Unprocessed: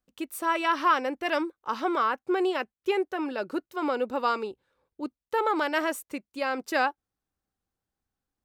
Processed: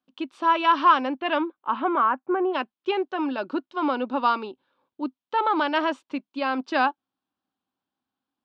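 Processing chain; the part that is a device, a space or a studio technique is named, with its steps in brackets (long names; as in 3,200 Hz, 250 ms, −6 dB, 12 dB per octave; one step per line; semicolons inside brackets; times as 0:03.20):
0:01.17–0:02.53: low-pass filter 4,300 Hz → 1,600 Hz 24 dB per octave
kitchen radio (loudspeaker in its box 210–4,400 Hz, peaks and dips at 260 Hz +7 dB, 460 Hz −8 dB, 990 Hz +5 dB, 2,000 Hz −7 dB, 3,200 Hz +4 dB)
level +3 dB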